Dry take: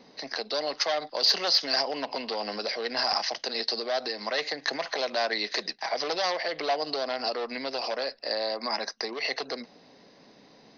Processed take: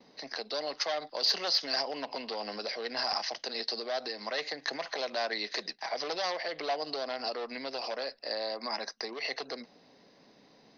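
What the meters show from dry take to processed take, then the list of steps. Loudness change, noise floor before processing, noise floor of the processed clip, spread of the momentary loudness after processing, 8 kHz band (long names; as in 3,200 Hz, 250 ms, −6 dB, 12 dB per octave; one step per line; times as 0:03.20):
−5.0 dB, −56 dBFS, −61 dBFS, 9 LU, −5.0 dB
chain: noise gate with hold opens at −47 dBFS
level −5 dB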